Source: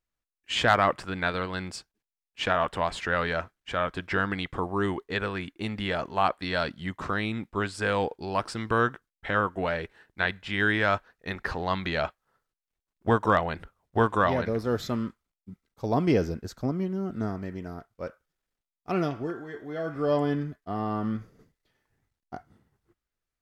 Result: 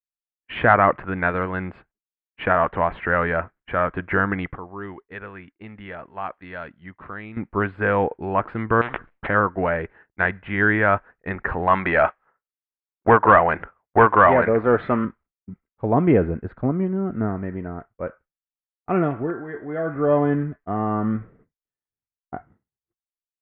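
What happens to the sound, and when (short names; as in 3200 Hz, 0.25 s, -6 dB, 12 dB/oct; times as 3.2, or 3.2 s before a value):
4.55–7.37 pre-emphasis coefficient 0.8
8.81–9.27 spectral compressor 10:1
11.67–15.05 overdrive pedal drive 14 dB, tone 3700 Hz, clips at -9 dBFS
whole clip: expander -48 dBFS; inverse Chebyshev low-pass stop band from 5300 Hz, stop band 50 dB; gain +6.5 dB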